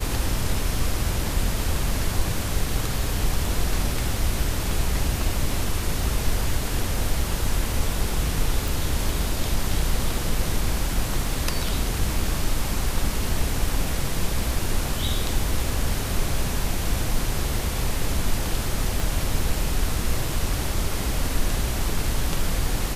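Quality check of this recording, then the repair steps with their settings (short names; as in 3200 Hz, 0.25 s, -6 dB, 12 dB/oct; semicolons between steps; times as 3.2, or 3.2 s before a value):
8.68 pop
19 pop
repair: de-click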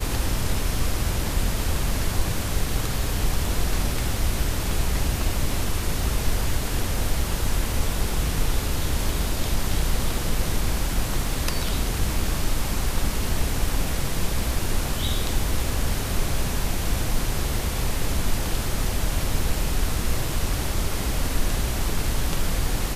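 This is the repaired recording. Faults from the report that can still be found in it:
none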